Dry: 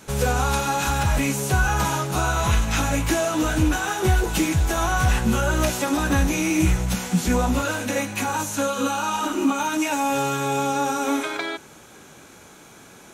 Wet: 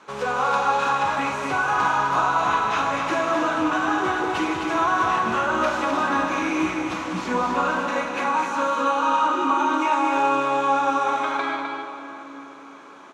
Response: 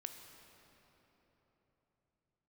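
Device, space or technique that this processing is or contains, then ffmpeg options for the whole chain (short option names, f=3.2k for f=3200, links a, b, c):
station announcement: -filter_complex "[0:a]highpass=300,lowpass=3.8k,equalizer=f=1.1k:t=o:w=0.57:g=11.5,aecho=1:1:43.73|195.3|256.6:0.282|0.355|0.501[a];[1:a]atrim=start_sample=2205[b];[a][b]afir=irnorm=-1:irlink=0,volume=1dB"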